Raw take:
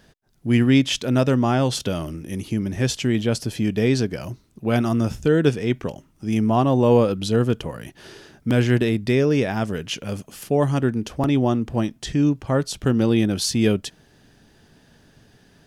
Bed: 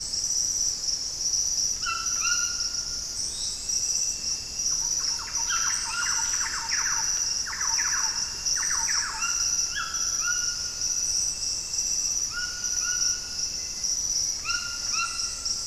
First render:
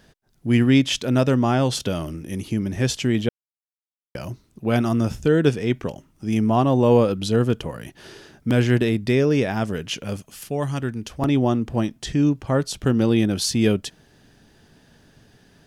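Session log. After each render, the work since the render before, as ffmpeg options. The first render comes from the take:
-filter_complex "[0:a]asettb=1/sr,asplit=3[s0][s1][s2];[s0]atrim=end=10.164[s3];[s1]atrim=start=10.16:end=11.22,asetpts=PTS-STARTPTS,afade=t=in:d=0.004:c=qsin,afade=t=out:st=1.056:d=0.004:c=qsin,equalizer=f=370:w=0.35:g=-7[s4];[s2]atrim=start=11.216[s5];[s3][s4]acrossfade=d=0.004:c1=hsin:c2=qsin[s6];[s6][s5]acrossfade=d=0.004:c1=qsin:c2=hsin,asplit=3[s7][s8][s9];[s7]atrim=end=3.29,asetpts=PTS-STARTPTS,afade=t=out:st=3.286:d=0.004:c=hsin[s10];[s8]atrim=start=3.29:end=4.15,asetpts=PTS-STARTPTS,volume=0[s11];[s9]atrim=start=4.15,asetpts=PTS-STARTPTS,afade=t=in:d=0.004:c=hsin[s12];[s10][s11][s12]concat=n=3:v=0:a=1"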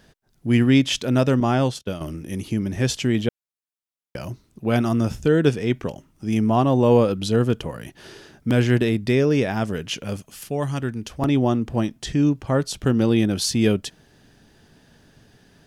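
-filter_complex "[0:a]asettb=1/sr,asplit=3[s0][s1][s2];[s0]atrim=end=1.404[s3];[s1]atrim=start=1.4:end=2.01,asetpts=PTS-STARTPTS,afade=t=in:d=0.004:c=qsin,afade=t=out:st=0.606:d=0.004:c=qsin,agate=range=0.0224:threshold=0.1:ratio=3:release=100:detection=peak[s4];[s2]atrim=start=2.006[s5];[s3][s4]acrossfade=d=0.004:c1=hsin:c2=qsin[s6];[s6][s5]acrossfade=d=0.004:c1=qsin:c2=hsin"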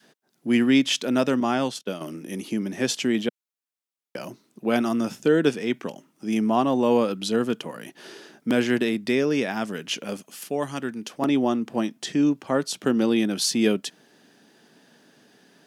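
-af "highpass=f=200:w=0.5412,highpass=f=200:w=1.3066,adynamicequalizer=threshold=0.0251:dfrequency=460:dqfactor=0.84:tfrequency=460:tqfactor=0.84:attack=5:release=100:ratio=0.375:range=3:mode=cutabove:tftype=bell"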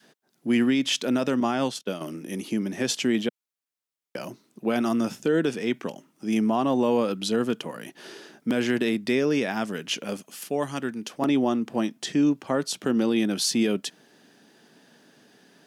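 -af "alimiter=limit=0.2:level=0:latency=1:release=57"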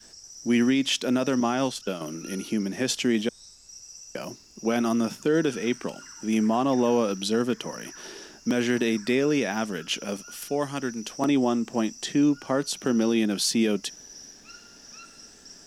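-filter_complex "[1:a]volume=0.112[s0];[0:a][s0]amix=inputs=2:normalize=0"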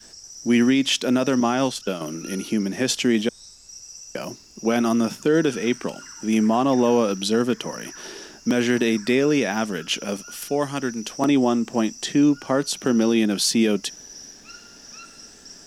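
-af "volume=1.58"

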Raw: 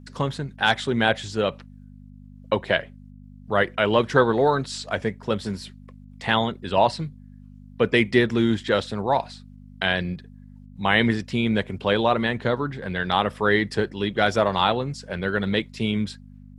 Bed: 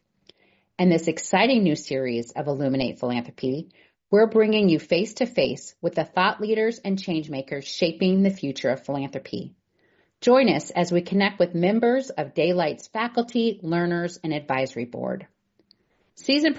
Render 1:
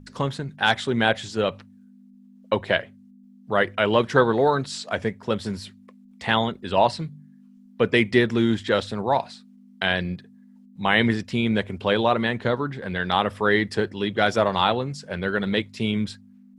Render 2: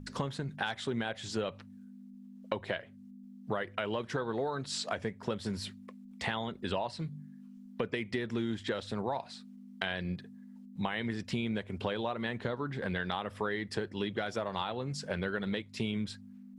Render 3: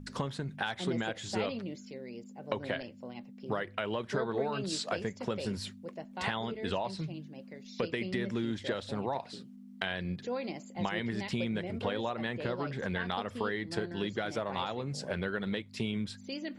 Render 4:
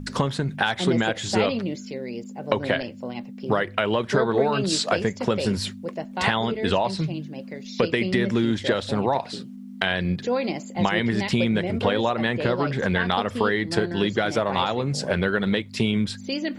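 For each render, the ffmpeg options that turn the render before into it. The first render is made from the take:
-af "bandreject=f=50:t=h:w=4,bandreject=f=100:t=h:w=4,bandreject=f=150:t=h:w=4"
-af "alimiter=limit=0.282:level=0:latency=1:release=362,acompressor=threshold=0.0282:ratio=6"
-filter_complex "[1:a]volume=0.106[s0];[0:a][s0]amix=inputs=2:normalize=0"
-af "volume=3.76,alimiter=limit=0.708:level=0:latency=1"

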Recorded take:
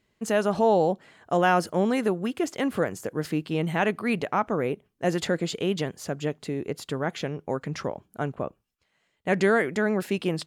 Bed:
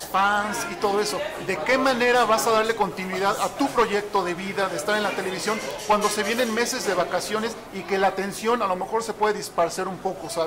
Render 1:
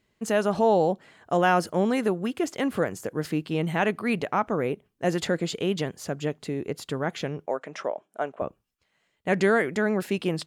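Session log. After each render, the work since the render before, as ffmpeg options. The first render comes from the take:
-filter_complex "[0:a]asettb=1/sr,asplit=3[s0][s1][s2];[s0]atrim=end=7.464[s3];[s1]atrim=start=7.46:end=8.42,asetpts=PTS-STARTPTS,afade=t=in:d=0.004:c=qsin,afade=t=out:st=0.956:d=0.004:c=qsin,highpass=410,equalizer=f=630:t=q:w=4:g=8,equalizer=f=4500:t=q:w=4:g=-10,equalizer=f=6900:t=q:w=4:g=-4,lowpass=f=8900:w=0.5412,lowpass=f=8900:w=1.3066[s4];[s2]atrim=start=8.416[s5];[s3][s4]acrossfade=d=0.004:c1=hsin:c2=qsin[s6];[s6][s5]acrossfade=d=0.004:c1=qsin:c2=hsin"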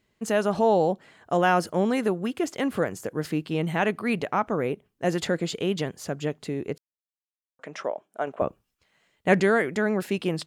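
-filter_complex "[0:a]asplit=5[s0][s1][s2][s3][s4];[s0]atrim=end=6.78,asetpts=PTS-STARTPTS,afade=t=out:st=6.776:d=0.004:c=hsin[s5];[s1]atrim=start=6.78:end=7.59,asetpts=PTS-STARTPTS,volume=0[s6];[s2]atrim=start=7.59:end=8.272,asetpts=PTS-STARTPTS,afade=t=in:d=0.004:c=hsin[s7];[s3]atrim=start=8.268:end=9.402,asetpts=PTS-STARTPTS,volume=1.68[s8];[s4]atrim=start=9.398[s9];[s5][s6][s7]concat=n=3:v=0:a=1[s10];[s10][s8]acrossfade=d=0.004:c1=hsin:c2=hsin[s11];[s11][s9]acrossfade=d=0.004:c1=hsin:c2=hsin"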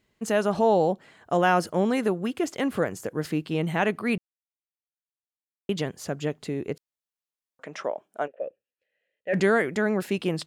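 -filter_complex "[0:a]asplit=3[s0][s1][s2];[s0]afade=t=out:st=8.26:d=0.02[s3];[s1]asplit=3[s4][s5][s6];[s4]bandpass=f=530:t=q:w=8,volume=1[s7];[s5]bandpass=f=1840:t=q:w=8,volume=0.501[s8];[s6]bandpass=f=2480:t=q:w=8,volume=0.355[s9];[s7][s8][s9]amix=inputs=3:normalize=0,afade=t=in:st=8.26:d=0.02,afade=t=out:st=9.33:d=0.02[s10];[s2]afade=t=in:st=9.33:d=0.02[s11];[s3][s10][s11]amix=inputs=3:normalize=0,asplit=3[s12][s13][s14];[s12]atrim=end=4.18,asetpts=PTS-STARTPTS,afade=t=out:st=4.176:d=0.004:c=hsin[s15];[s13]atrim=start=4.18:end=5.69,asetpts=PTS-STARTPTS,volume=0[s16];[s14]atrim=start=5.69,asetpts=PTS-STARTPTS,afade=t=in:d=0.004:c=hsin[s17];[s15][s16][s17]concat=n=3:v=0:a=1"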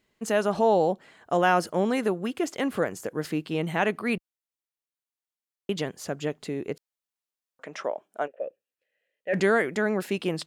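-af "equalizer=f=78:t=o:w=2.3:g=-6"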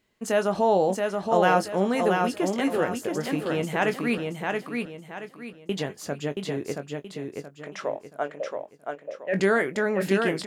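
-filter_complex "[0:a]asplit=2[s0][s1];[s1]adelay=21,volume=0.299[s2];[s0][s2]amix=inputs=2:normalize=0,aecho=1:1:676|1352|2028|2704:0.631|0.215|0.0729|0.0248"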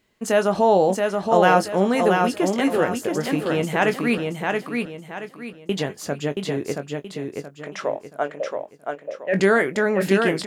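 -af "volume=1.68"

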